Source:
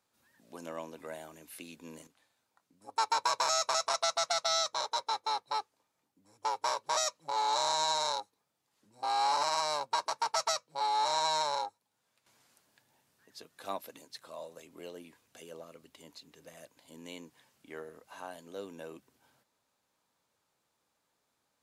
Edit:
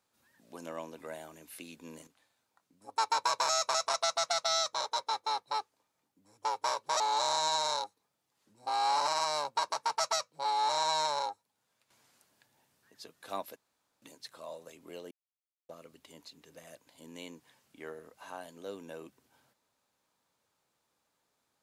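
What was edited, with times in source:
0:07.00–0:07.36: remove
0:13.92: splice in room tone 0.46 s
0:15.01–0:15.59: silence

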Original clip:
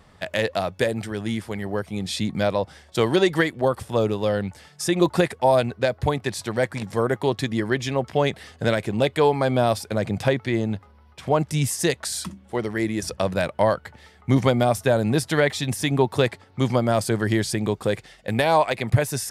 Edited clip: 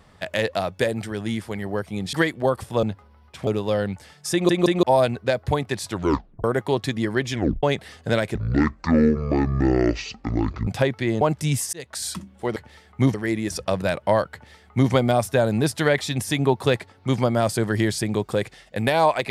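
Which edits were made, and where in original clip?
0:02.13–0:03.32: remove
0:04.87: stutter in place 0.17 s, 3 plays
0:06.45: tape stop 0.54 s
0:07.88: tape stop 0.30 s
0:08.90–0:10.13: play speed 53%
0:10.67–0:11.31: move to 0:04.02
0:11.83–0:12.15: fade in
0:13.85–0:14.43: duplicate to 0:12.66

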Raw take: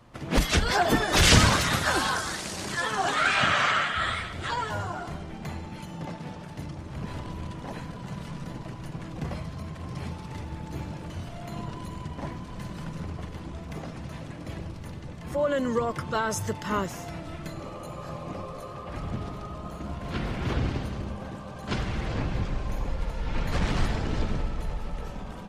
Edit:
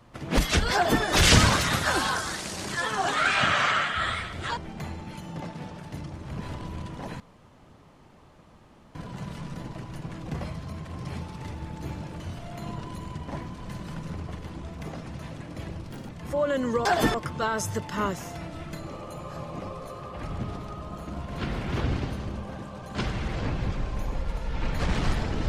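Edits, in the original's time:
0:00.74–0:01.03: duplicate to 0:15.87
0:04.57–0:05.22: remove
0:07.85: splice in room tone 1.75 s
0:14.80–0:15.11: play speed 161%

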